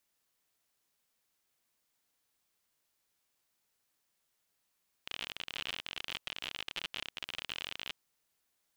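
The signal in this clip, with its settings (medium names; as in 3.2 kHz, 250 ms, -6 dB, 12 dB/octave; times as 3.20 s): random clicks 52 per s -22 dBFS 2.85 s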